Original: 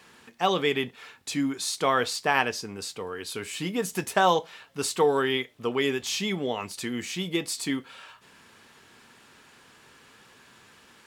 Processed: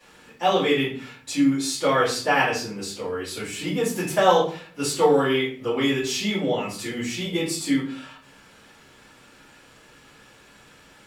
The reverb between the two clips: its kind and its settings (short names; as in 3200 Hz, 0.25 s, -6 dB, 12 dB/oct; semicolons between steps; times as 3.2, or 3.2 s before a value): shoebox room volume 42 m³, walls mixed, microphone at 2.5 m; gain -9 dB